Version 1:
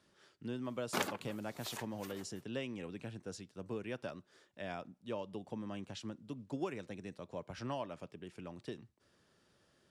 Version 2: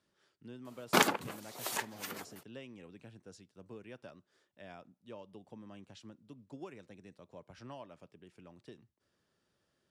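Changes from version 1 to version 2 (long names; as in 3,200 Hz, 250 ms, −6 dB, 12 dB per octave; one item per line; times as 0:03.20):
speech −8.0 dB
background +10.0 dB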